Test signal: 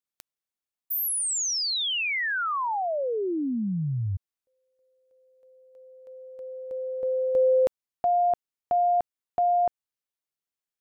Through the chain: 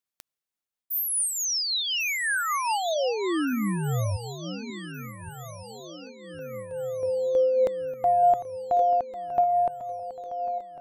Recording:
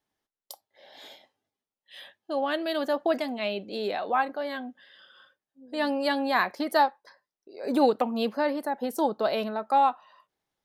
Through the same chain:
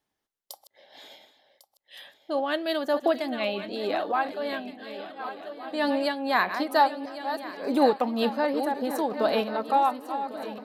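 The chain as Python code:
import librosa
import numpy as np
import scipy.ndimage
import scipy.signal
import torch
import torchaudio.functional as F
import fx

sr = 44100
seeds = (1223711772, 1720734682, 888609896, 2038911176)

y = fx.reverse_delay(x, sr, ms=588, wet_db=-11.0)
y = fx.echo_swing(y, sr, ms=1467, ratio=3, feedback_pct=51, wet_db=-14.0)
y = fx.am_noise(y, sr, seeds[0], hz=5.7, depth_pct=65)
y = F.gain(torch.from_numpy(y), 3.0).numpy()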